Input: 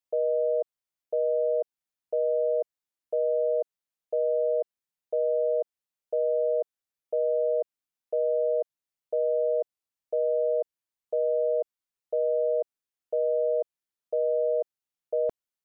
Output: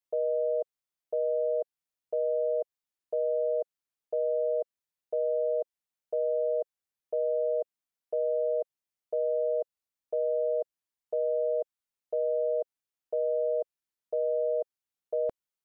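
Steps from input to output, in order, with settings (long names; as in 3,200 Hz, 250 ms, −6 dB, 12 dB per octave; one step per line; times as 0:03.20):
dynamic equaliser 530 Hz, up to −3 dB, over −42 dBFS, Q 7.1
level −2 dB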